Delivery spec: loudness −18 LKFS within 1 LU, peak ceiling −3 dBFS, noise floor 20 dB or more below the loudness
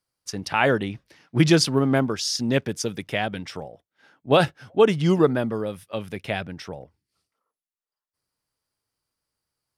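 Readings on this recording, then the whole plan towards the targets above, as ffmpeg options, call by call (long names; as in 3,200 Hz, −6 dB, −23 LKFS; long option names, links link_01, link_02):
integrated loudness −23.0 LKFS; sample peak −4.5 dBFS; target loudness −18.0 LKFS
→ -af "volume=5dB,alimiter=limit=-3dB:level=0:latency=1"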